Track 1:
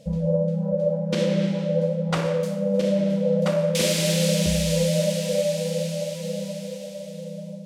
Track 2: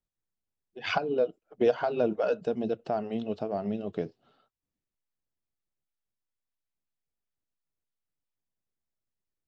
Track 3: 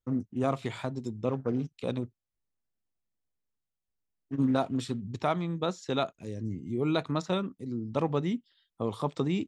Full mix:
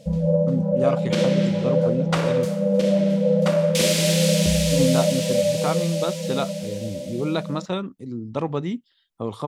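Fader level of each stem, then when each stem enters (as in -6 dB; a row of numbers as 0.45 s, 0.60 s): +2.5 dB, -12.5 dB, +3.0 dB; 0.00 s, 0.00 s, 0.40 s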